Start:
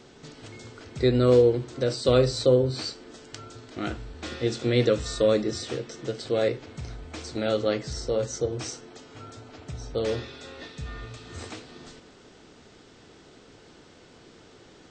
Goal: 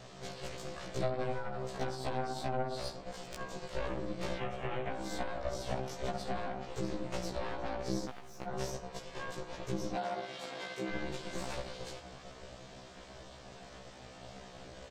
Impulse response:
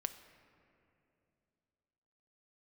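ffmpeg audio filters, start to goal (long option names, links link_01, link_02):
-filter_complex "[0:a]asplit=2[link_01][link_02];[link_02]adelay=63,lowpass=frequency=2000:poles=1,volume=-7.5dB,asplit=2[link_03][link_04];[link_04]adelay=63,lowpass=frequency=2000:poles=1,volume=0.35,asplit=2[link_05][link_06];[link_06]adelay=63,lowpass=frequency=2000:poles=1,volume=0.35,asplit=2[link_07][link_08];[link_08]adelay=63,lowpass=frequency=2000:poles=1,volume=0.35[link_09];[link_01][link_03][link_05][link_07][link_09]amix=inputs=5:normalize=0,aeval=exprs='val(0)*sin(2*PI*260*n/s)':channel_layout=same,acrossover=split=470|1200[link_10][link_11][link_12];[link_10]acompressor=threshold=-37dB:ratio=4[link_13];[link_11]acompressor=threshold=-30dB:ratio=4[link_14];[link_12]acompressor=threshold=-48dB:ratio=4[link_15];[link_13][link_14][link_15]amix=inputs=3:normalize=0,asplit=3[link_16][link_17][link_18];[link_16]afade=type=out:start_time=8.05:duration=0.02[link_19];[link_17]aeval=exprs='max(val(0),0)':channel_layout=same,afade=type=in:start_time=8.05:duration=0.02,afade=type=out:start_time=8.46:duration=0.02[link_20];[link_18]afade=type=in:start_time=8.46:duration=0.02[link_21];[link_19][link_20][link_21]amix=inputs=3:normalize=0,acompressor=threshold=-37dB:ratio=12,aeval=exprs='0.0473*(cos(1*acos(clip(val(0)/0.0473,-1,1)))-cos(1*PI/2))+0.00944*(cos(3*acos(clip(val(0)/0.0473,-1,1)))-cos(3*PI/2))+0.00841*(cos(4*acos(clip(val(0)/0.0473,-1,1)))-cos(4*PI/2))':channel_layout=same,asoftclip=type=tanh:threshold=-36dB,asettb=1/sr,asplit=3[link_22][link_23][link_24];[link_22]atrim=end=4.384[link_25];[link_23]atrim=start=4.38:end=4.91,asetpts=PTS-STARTPTS,afade=type=in:duration=0.004:curve=qsin,afade=type=out:start_time=0.526:duration=0.004:curve=qsin,highshelf=frequency=3500:width_type=q:width=3:gain=-8[link_26];[link_24]atrim=start=4.906[link_27];[link_25][link_26]acrossfade=duration=0.004:curve1=hsin:curve2=qsin[link_28];[link_28][link_27]acrossfade=duration=0.004:curve1=qsin:curve2=hsin,asettb=1/sr,asplit=3[link_29][link_30][link_31];[link_29]atrim=end=9.954[link_32];[link_30]atrim=start=9.95:end=10.91,asetpts=PTS-STARTPTS,afade=type=in:duration=0.004:curve=qsin,afade=type=out:start_time=0.956:duration=0.004:curve=qsin,highpass=260[link_33];[link_31]atrim=start=10.906[link_34];[link_32][link_33]acrossfade=duration=0.004:curve1=hsin:curve2=qsin[link_35];[link_35][link_34]acrossfade=duration=0.004:curve1=qsin:curve2=hsin,afftfilt=real='re*1.73*eq(mod(b,3),0)':imag='im*1.73*eq(mod(b,3),0)':win_size=2048:overlap=0.75,volume=13.5dB"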